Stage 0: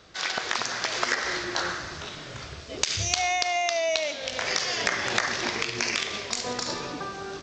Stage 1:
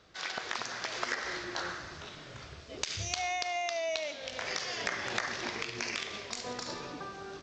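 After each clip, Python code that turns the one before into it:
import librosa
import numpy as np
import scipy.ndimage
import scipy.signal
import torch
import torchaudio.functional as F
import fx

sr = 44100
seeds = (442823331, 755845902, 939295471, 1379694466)

y = fx.high_shelf(x, sr, hz=5800.0, db=-5.0)
y = F.gain(torch.from_numpy(y), -7.5).numpy()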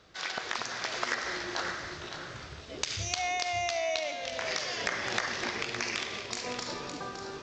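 y = x + 10.0 ** (-8.5 / 20.0) * np.pad(x, (int(563 * sr / 1000.0), 0))[:len(x)]
y = F.gain(torch.from_numpy(y), 2.0).numpy()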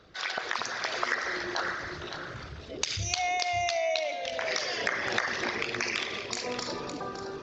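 y = fx.envelope_sharpen(x, sr, power=1.5)
y = F.gain(torch.from_numpy(y), 2.5).numpy()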